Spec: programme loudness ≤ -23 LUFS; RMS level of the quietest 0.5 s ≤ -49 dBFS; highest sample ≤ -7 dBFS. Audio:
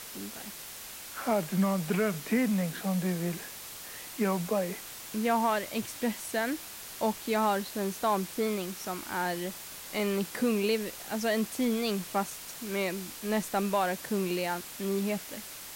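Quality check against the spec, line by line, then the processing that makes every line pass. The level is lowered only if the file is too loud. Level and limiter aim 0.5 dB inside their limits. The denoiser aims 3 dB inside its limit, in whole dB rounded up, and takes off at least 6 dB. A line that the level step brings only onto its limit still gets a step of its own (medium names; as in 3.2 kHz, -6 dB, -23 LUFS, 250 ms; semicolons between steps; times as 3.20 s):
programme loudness -31.5 LUFS: pass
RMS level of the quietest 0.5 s -44 dBFS: fail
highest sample -17.0 dBFS: pass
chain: noise reduction 8 dB, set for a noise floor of -44 dBFS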